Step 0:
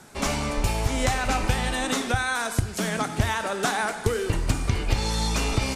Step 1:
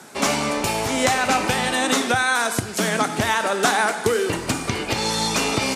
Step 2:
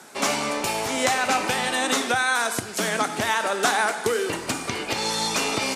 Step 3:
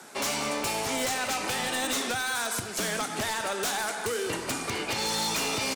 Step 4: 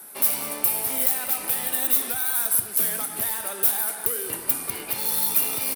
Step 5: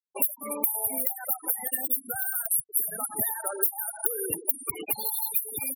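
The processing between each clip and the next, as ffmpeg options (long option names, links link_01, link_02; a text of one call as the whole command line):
ffmpeg -i in.wav -af "highpass=200,volume=6.5dB" out.wav
ffmpeg -i in.wav -af "lowshelf=frequency=170:gain=-11,volume=-2dB" out.wav
ffmpeg -i in.wav -filter_complex "[0:a]acrossover=split=150|3000[link_01][link_02][link_03];[link_02]acompressor=threshold=-26dB:ratio=6[link_04];[link_01][link_04][link_03]amix=inputs=3:normalize=0,aeval=exprs='0.0841*(abs(mod(val(0)/0.0841+3,4)-2)-1)':channel_layout=same,asplit=2[link_05][link_06];[link_06]adelay=198.3,volume=-14dB,highshelf=frequency=4000:gain=-4.46[link_07];[link_05][link_07]amix=inputs=2:normalize=0,volume=-1.5dB" out.wav
ffmpeg -i in.wav -af "aexciter=amount=15.6:drive=6.6:freq=10000,volume=-5dB" out.wav
ffmpeg -i in.wav -af "acrusher=bits=4:mode=log:mix=0:aa=0.000001,acompressor=threshold=-26dB:ratio=4,afftfilt=real='re*gte(hypot(re,im),0.0398)':imag='im*gte(hypot(re,im),0.0398)':win_size=1024:overlap=0.75,volume=5dB" out.wav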